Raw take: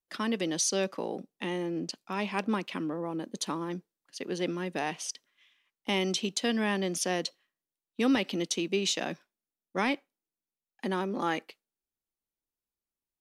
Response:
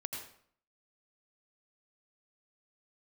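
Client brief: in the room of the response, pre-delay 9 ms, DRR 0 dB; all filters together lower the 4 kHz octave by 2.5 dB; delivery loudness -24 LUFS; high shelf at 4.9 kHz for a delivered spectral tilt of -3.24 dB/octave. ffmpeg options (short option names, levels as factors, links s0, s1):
-filter_complex "[0:a]equalizer=f=4000:t=o:g=-7,highshelf=f=4900:g=7,asplit=2[s0][s1];[1:a]atrim=start_sample=2205,adelay=9[s2];[s1][s2]afir=irnorm=-1:irlink=0,volume=1[s3];[s0][s3]amix=inputs=2:normalize=0,volume=1.78"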